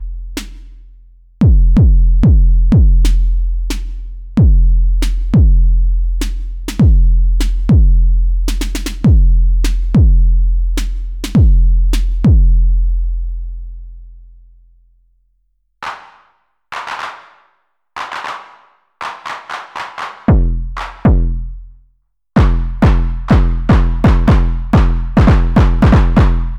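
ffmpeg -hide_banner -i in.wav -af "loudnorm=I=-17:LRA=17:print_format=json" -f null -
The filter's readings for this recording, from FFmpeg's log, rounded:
"input_i" : "-13.6",
"input_tp" : "-1.2",
"input_lra" : "15.9",
"input_thresh" : "-24.9",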